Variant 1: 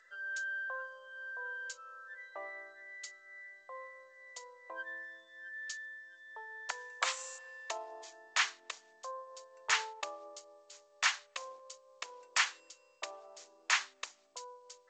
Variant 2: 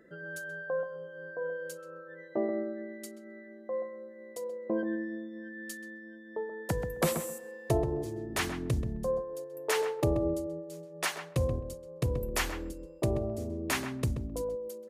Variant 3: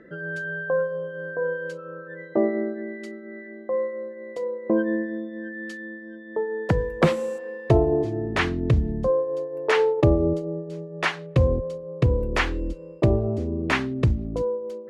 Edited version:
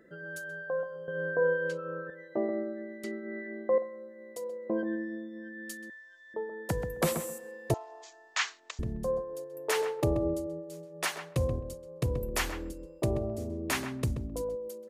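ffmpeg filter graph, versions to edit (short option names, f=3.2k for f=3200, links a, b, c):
-filter_complex "[2:a]asplit=2[a][b];[0:a]asplit=2[c][d];[1:a]asplit=5[e][f][g][h][i];[e]atrim=end=1.082[j];[a]atrim=start=1.078:end=2.102[k];[f]atrim=start=2.098:end=3.042[l];[b]atrim=start=3.038:end=3.782[m];[g]atrim=start=3.778:end=5.902[n];[c]atrim=start=5.898:end=6.342[o];[h]atrim=start=6.338:end=7.742[p];[d]atrim=start=7.738:end=8.792[q];[i]atrim=start=8.788[r];[j][k]acrossfade=d=0.004:c1=hsin:c2=hsin[s];[s][l]acrossfade=d=0.004:c1=hsin:c2=hsin[t];[t][m]acrossfade=d=0.004:c1=hsin:c2=hsin[u];[u][n]acrossfade=d=0.004:c1=hsin:c2=hsin[v];[v][o]acrossfade=d=0.004:c1=hsin:c2=hsin[w];[w][p]acrossfade=d=0.004:c1=hsin:c2=hsin[x];[x][q]acrossfade=d=0.004:c1=hsin:c2=hsin[y];[y][r]acrossfade=d=0.004:c1=hsin:c2=hsin"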